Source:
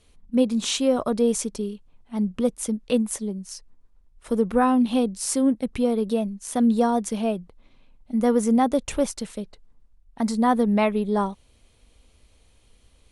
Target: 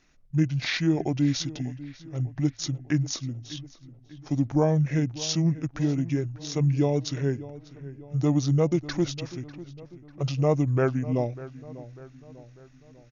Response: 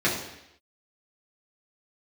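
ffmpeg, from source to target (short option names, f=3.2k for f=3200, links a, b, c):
-filter_complex "[0:a]lowshelf=f=160:g=-6.5,bandreject=f=60:t=h:w=6,bandreject=f=120:t=h:w=6,bandreject=f=180:t=h:w=6,asetrate=26990,aresample=44100,atempo=1.63392,asplit=2[a][b];[b]adelay=596,lowpass=f=2.8k:p=1,volume=-16.5dB,asplit=2[c][d];[d]adelay=596,lowpass=f=2.8k:p=1,volume=0.51,asplit=2[e][f];[f]adelay=596,lowpass=f=2.8k:p=1,volume=0.51,asplit=2[g][h];[h]adelay=596,lowpass=f=2.8k:p=1,volume=0.51,asplit=2[i][j];[j]adelay=596,lowpass=f=2.8k:p=1,volume=0.51[k];[c][e][g][i][k]amix=inputs=5:normalize=0[l];[a][l]amix=inputs=2:normalize=0,volume=-1.5dB"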